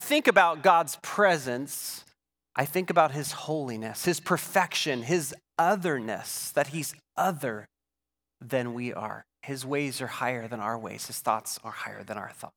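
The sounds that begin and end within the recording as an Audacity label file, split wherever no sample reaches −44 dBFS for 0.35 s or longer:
2.550000	7.650000	sound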